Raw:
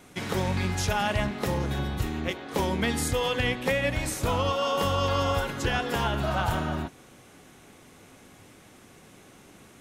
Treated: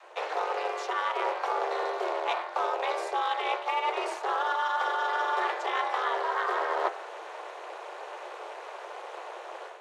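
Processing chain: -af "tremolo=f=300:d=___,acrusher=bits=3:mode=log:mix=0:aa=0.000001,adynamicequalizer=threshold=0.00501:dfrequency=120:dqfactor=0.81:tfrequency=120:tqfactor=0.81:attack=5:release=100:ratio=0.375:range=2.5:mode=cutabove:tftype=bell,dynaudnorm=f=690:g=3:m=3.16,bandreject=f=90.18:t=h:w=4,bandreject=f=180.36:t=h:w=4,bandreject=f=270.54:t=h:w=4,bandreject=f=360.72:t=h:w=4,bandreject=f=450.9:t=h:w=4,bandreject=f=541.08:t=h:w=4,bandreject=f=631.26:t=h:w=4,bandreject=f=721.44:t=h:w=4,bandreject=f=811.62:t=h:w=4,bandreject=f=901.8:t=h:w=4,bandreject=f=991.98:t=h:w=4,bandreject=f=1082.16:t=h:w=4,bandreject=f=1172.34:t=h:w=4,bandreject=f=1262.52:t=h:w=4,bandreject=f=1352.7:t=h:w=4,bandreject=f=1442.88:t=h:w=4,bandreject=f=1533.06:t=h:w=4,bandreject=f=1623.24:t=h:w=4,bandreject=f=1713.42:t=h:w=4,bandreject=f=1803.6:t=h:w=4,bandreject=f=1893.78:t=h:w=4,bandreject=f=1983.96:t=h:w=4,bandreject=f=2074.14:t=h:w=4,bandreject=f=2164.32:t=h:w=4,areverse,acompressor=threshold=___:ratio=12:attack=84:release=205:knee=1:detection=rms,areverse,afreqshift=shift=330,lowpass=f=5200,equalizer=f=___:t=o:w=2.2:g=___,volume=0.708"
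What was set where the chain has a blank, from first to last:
0.857, 0.02, 980, 11.5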